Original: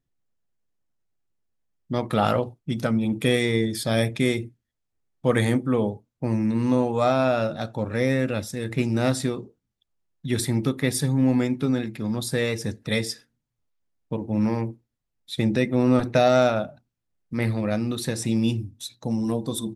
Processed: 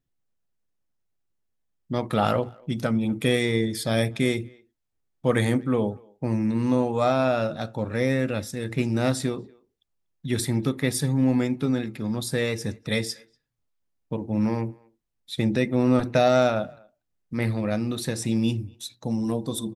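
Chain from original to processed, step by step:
far-end echo of a speakerphone 240 ms, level −26 dB
level −1 dB

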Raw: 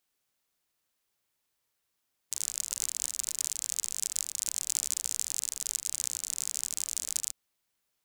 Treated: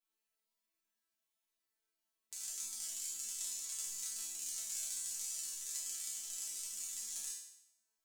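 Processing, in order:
0:03.86–0:04.44: floating-point word with a short mantissa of 2 bits
resonators tuned to a chord A3 fifth, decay 0.76 s
level +12 dB

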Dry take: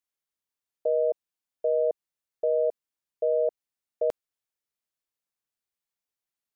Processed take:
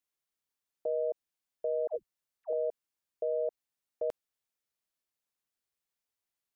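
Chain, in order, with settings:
brickwall limiter −25 dBFS, peak gain reduction 7.5 dB
0:01.87–0:02.53: all-pass dispersion lows, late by 119 ms, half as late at 520 Hz

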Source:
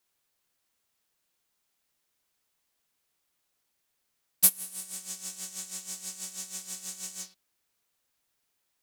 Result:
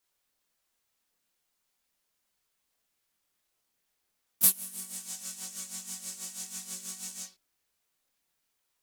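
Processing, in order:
multi-voice chorus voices 4, 0.32 Hz, delay 25 ms, depth 2.8 ms
pitch-shifted copies added +4 semitones −7 dB
level +1.5 dB

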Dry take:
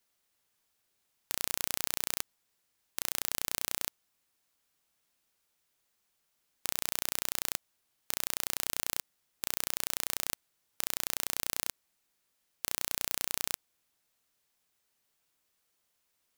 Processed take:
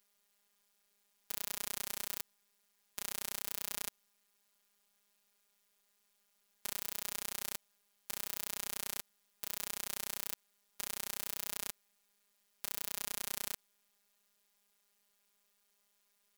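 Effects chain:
brickwall limiter −11.5 dBFS, peak gain reduction 8 dB
phases set to zero 203 Hz
level +3.5 dB

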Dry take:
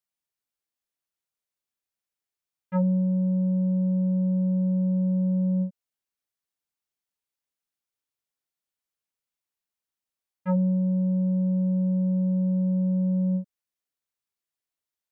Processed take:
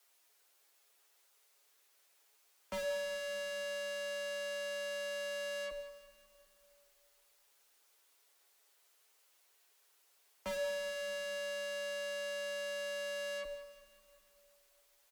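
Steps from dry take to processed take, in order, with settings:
Butterworth high-pass 320 Hz 48 dB per octave
comb filter 7.4 ms, depth 71%
in parallel at +2.5 dB: brickwall limiter −38 dBFS, peak gain reduction 19 dB
on the sum: tube saturation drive 52 dB, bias 0.75
frequency shifter +20 Hz
echo with a time of its own for lows and highs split 660 Hz, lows 101 ms, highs 185 ms, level −14 dB
on a send at −10 dB: convolution reverb RT60 2.3 s, pre-delay 5 ms
on the sum: level +14.5 dB

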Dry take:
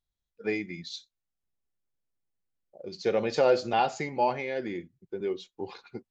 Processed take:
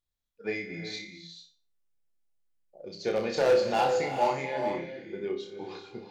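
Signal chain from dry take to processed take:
mains-hum notches 50/100/150/200/250/300/350/400/450 Hz
wave folding −16.5 dBFS
flutter between parallel walls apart 5.1 metres, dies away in 0.35 s
reverb whose tail is shaped and stops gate 470 ms rising, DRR 6.5 dB
level −2 dB

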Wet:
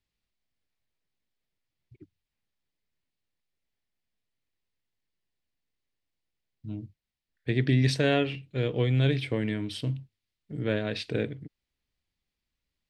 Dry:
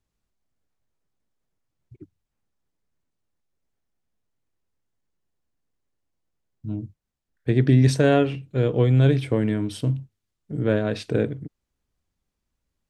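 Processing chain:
flat-topped bell 3,000 Hz +9 dB
level −7 dB

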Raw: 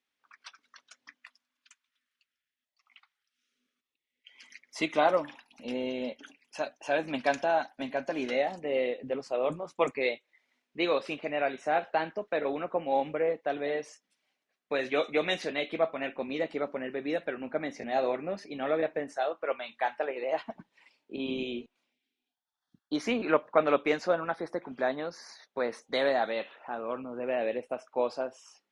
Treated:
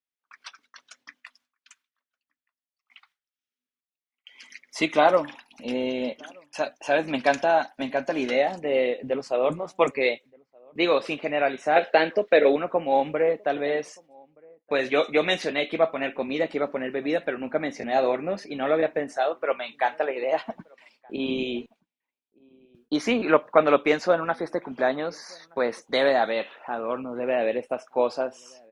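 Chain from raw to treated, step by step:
0:11.76–0:12.56: graphic EQ with 10 bands 125 Hz −5 dB, 250 Hz +3 dB, 500 Hz +9 dB, 1,000 Hz −6 dB, 2,000 Hz +7 dB, 4,000 Hz +7 dB
noise gate with hold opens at −53 dBFS
slap from a distant wall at 210 metres, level −28 dB
level +6 dB

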